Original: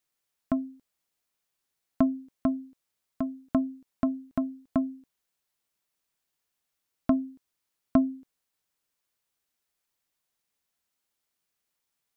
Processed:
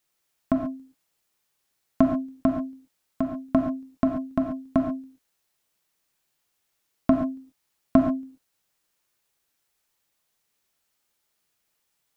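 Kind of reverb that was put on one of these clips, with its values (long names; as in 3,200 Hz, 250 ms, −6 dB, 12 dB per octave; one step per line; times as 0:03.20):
reverb whose tail is shaped and stops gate 160 ms flat, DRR 2.5 dB
level +5 dB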